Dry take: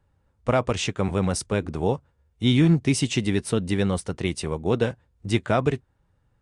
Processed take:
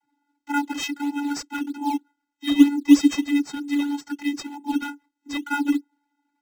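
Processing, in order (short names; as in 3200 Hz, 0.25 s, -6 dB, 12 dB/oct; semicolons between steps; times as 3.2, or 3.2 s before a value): tilt +3.5 dB/oct; vocoder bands 32, square 287 Hz; in parallel at -7 dB: decimation with a swept rate 10×, swing 100% 3.2 Hz; on the sum: gain +2.5 dB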